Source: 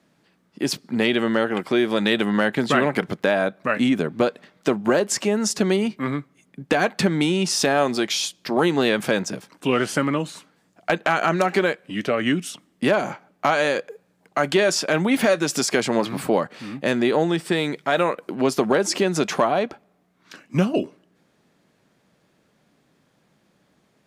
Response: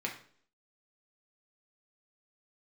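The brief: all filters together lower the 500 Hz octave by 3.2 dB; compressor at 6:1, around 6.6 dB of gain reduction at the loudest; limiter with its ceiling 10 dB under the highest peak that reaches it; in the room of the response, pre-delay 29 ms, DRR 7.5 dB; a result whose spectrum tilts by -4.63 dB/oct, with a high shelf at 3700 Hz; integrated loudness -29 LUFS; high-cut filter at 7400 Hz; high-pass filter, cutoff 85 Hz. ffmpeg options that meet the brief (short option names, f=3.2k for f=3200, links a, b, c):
-filter_complex "[0:a]highpass=85,lowpass=7.4k,equalizer=f=500:t=o:g=-4,highshelf=f=3.7k:g=-6,acompressor=threshold=-23dB:ratio=6,alimiter=limit=-20dB:level=0:latency=1,asplit=2[a][b];[1:a]atrim=start_sample=2205,adelay=29[c];[b][c]afir=irnorm=-1:irlink=0,volume=-11dB[d];[a][d]amix=inputs=2:normalize=0,volume=1.5dB"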